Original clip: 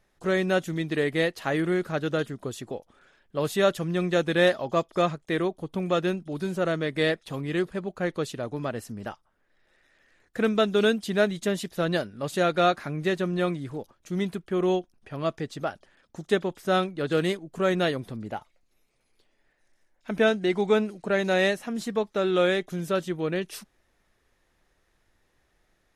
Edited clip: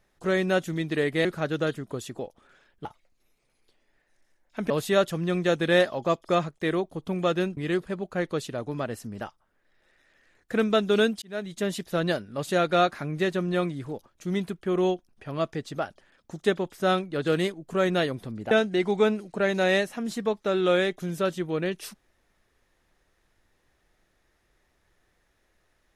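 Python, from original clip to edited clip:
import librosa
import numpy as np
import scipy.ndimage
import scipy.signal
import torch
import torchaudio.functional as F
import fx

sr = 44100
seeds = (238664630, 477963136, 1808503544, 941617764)

y = fx.edit(x, sr, fx.cut(start_s=1.25, length_s=0.52),
    fx.cut(start_s=6.24, length_s=1.18),
    fx.fade_in_span(start_s=11.07, length_s=0.51),
    fx.move(start_s=18.36, length_s=1.85, to_s=3.37), tone=tone)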